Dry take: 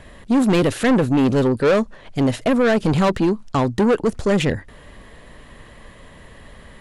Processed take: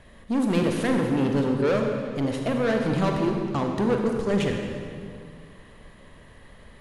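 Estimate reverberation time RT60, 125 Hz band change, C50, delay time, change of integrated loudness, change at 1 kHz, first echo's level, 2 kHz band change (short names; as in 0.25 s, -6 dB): 2.3 s, -5.5 dB, 2.5 dB, none, -6.0 dB, -6.5 dB, none, -6.5 dB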